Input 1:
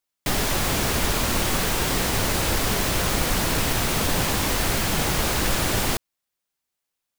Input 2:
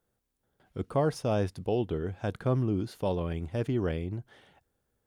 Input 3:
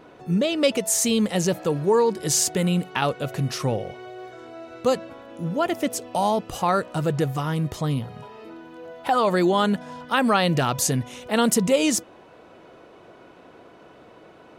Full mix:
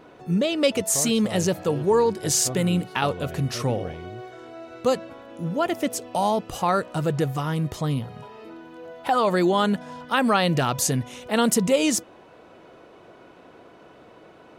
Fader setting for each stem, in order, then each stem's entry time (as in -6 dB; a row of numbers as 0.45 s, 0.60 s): mute, -6.0 dB, -0.5 dB; mute, 0.00 s, 0.00 s